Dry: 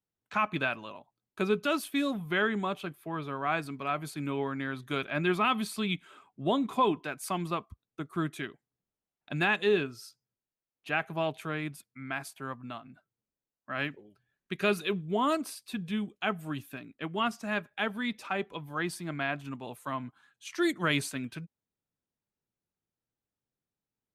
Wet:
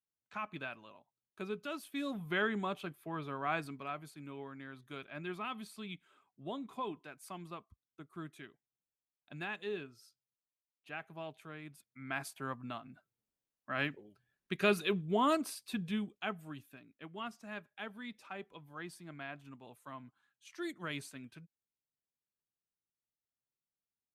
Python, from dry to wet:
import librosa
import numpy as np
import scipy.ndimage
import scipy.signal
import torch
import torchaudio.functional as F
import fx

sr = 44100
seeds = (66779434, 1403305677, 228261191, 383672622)

y = fx.gain(x, sr, db=fx.line((1.82, -12.5), (2.24, -5.0), (3.64, -5.0), (4.16, -14.0), (11.64, -14.0), (12.2, -2.0), (15.82, -2.0), (16.7, -13.0)))